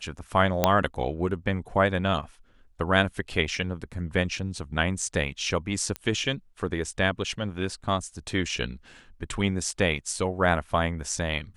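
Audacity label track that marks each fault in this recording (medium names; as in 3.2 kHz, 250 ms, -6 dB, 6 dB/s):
0.640000	0.640000	pop -5 dBFS
5.960000	5.960000	pop -16 dBFS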